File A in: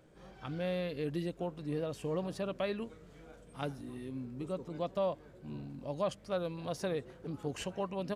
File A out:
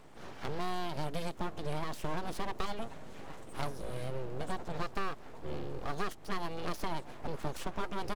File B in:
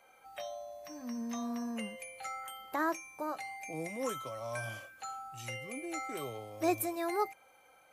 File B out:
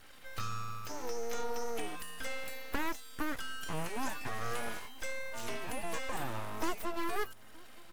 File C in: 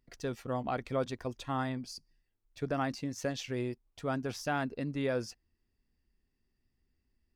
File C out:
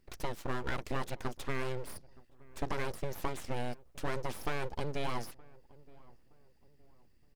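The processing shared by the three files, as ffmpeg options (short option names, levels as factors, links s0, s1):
-filter_complex "[0:a]acrossover=split=1200|4400[s0][s1][s2];[s0]acompressor=threshold=0.01:ratio=4[s3];[s1]acompressor=threshold=0.00141:ratio=4[s4];[s2]acompressor=threshold=0.00141:ratio=4[s5];[s3][s4][s5]amix=inputs=3:normalize=0,aeval=exprs='abs(val(0))':c=same,asplit=2[s6][s7];[s7]adelay=920,lowpass=f=1000:p=1,volume=0.0794,asplit=2[s8][s9];[s9]adelay=920,lowpass=f=1000:p=1,volume=0.43,asplit=2[s10][s11];[s11]adelay=920,lowpass=f=1000:p=1,volume=0.43[s12];[s6][s8][s10][s12]amix=inputs=4:normalize=0,volume=2.82"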